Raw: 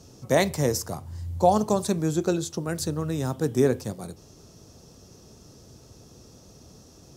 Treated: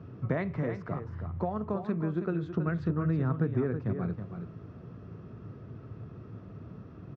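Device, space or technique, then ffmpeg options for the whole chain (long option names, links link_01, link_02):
bass amplifier: -filter_complex "[0:a]acompressor=threshold=-31dB:ratio=4,highpass=71,equalizer=frequency=110:width_type=q:width=4:gain=9,equalizer=frequency=170:width_type=q:width=4:gain=5,equalizer=frequency=530:width_type=q:width=4:gain=-5,equalizer=frequency=820:width_type=q:width=4:gain=-8,equalizer=frequency=1300:width_type=q:width=4:gain=5,lowpass=frequency=2200:width=0.5412,lowpass=frequency=2200:width=1.3066,asettb=1/sr,asplit=3[link_01][link_02][link_03];[link_01]atrim=end=0.564[link_04];[link_02]atrim=start=0.56:end=2.45,asetpts=PTS-STARTPTS,afade=type=in:duration=0.004:curve=qsin,afade=type=out:start_time=1.886:duration=0.004:curve=qsin,highpass=frequency=190:poles=1[link_05];[link_03]atrim=start=2.446[link_06];[link_04][link_05]acrossfade=duration=0.004:curve1=hsin:curve2=qsin[link_07];[link_07][link_06]acrossfade=duration=0.004:curve1=qsin:curve2=hsin,aecho=1:1:323:0.376,volume=3dB"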